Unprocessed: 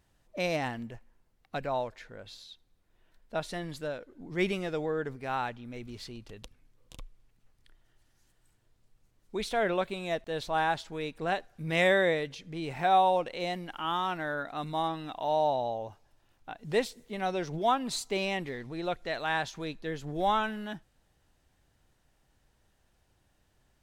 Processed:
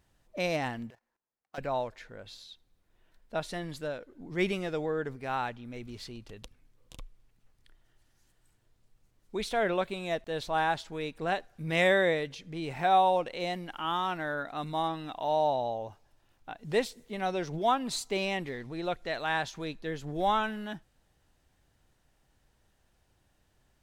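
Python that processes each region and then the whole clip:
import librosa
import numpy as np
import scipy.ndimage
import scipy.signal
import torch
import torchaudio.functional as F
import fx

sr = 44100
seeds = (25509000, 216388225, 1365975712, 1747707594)

y = fx.chain(x, sr, fx.median_filter(points=15),
    fx.highpass(hz=960.0, slope=6),
    fx.level_steps(step_db=14), at=(0.9, 1.58))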